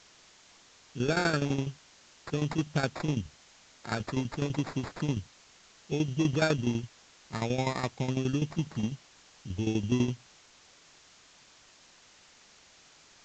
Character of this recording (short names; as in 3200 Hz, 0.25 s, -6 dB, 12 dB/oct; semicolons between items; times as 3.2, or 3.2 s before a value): aliases and images of a low sample rate 3000 Hz, jitter 0%; tremolo saw down 12 Hz, depth 75%; a quantiser's noise floor 10-bit, dither triangular; Vorbis